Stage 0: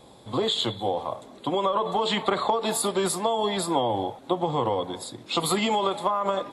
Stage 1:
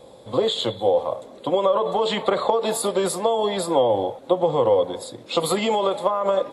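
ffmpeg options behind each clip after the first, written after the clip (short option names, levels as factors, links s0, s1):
-af "equalizer=f=520:t=o:w=0.46:g=12"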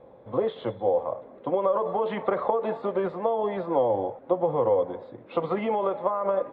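-af "lowpass=f=2100:w=0.5412,lowpass=f=2100:w=1.3066,volume=0.596"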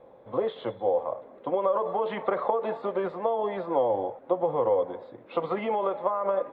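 -af "equalizer=f=80:w=0.3:g=-6.5"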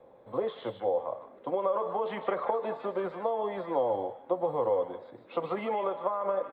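-filter_complex "[0:a]acrossover=split=130|960[s0][s1][s2];[s0]acrusher=samples=11:mix=1:aa=0.000001[s3];[s2]aecho=1:1:152:0.501[s4];[s3][s1][s4]amix=inputs=3:normalize=0,volume=0.668"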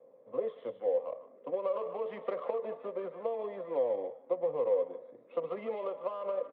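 -af "adynamicsmooth=sensitivity=4:basefreq=1900,highpass=f=160:w=0.5412,highpass=f=160:w=1.3066,equalizer=f=190:t=q:w=4:g=-5,equalizer=f=340:t=q:w=4:g=-6,equalizer=f=500:t=q:w=4:g=6,equalizer=f=840:t=q:w=4:g=-10,equalizer=f=1500:t=q:w=4:g=-9,lowpass=f=3600:w=0.5412,lowpass=f=3600:w=1.3066,volume=0.596"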